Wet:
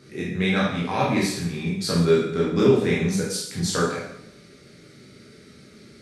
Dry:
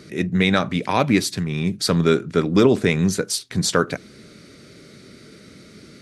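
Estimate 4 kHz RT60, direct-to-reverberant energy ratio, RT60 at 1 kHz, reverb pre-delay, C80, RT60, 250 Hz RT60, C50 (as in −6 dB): 0.70 s, −6.0 dB, 0.75 s, 6 ms, 6.0 dB, 0.75 s, 0.80 s, 2.0 dB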